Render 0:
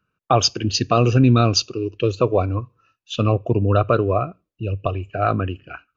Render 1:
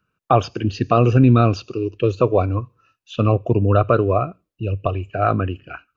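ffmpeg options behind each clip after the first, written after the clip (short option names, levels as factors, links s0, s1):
-filter_complex "[0:a]acrossover=split=2500[s0][s1];[s1]acompressor=threshold=0.00708:ratio=4:attack=1:release=60[s2];[s0][s2]amix=inputs=2:normalize=0,volume=1.19"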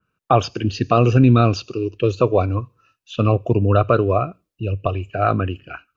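-af "adynamicequalizer=threshold=0.0178:dfrequency=2600:dqfactor=0.7:tfrequency=2600:tqfactor=0.7:attack=5:release=100:ratio=0.375:range=2.5:mode=boostabove:tftype=highshelf"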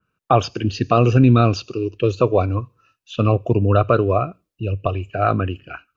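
-af anull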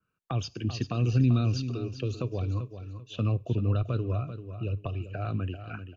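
-filter_complex "[0:a]acrossover=split=260|3000[s0][s1][s2];[s1]acompressor=threshold=0.0355:ratio=10[s3];[s0][s3][s2]amix=inputs=3:normalize=0,asplit=2[s4][s5];[s5]aecho=0:1:390|780|1170:0.299|0.0776|0.0202[s6];[s4][s6]amix=inputs=2:normalize=0,volume=0.398"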